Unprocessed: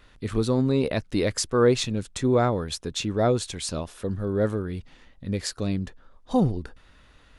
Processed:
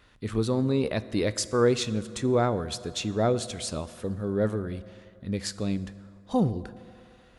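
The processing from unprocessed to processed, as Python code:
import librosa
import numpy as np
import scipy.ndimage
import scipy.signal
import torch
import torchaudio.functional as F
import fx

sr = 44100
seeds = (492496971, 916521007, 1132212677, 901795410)

y = scipy.signal.sosfilt(scipy.signal.butter(2, 43.0, 'highpass', fs=sr, output='sos'), x)
y = fx.rev_fdn(y, sr, rt60_s=2.7, lf_ratio=0.7, hf_ratio=0.5, size_ms=28.0, drr_db=14.5)
y = y * librosa.db_to_amplitude(-2.5)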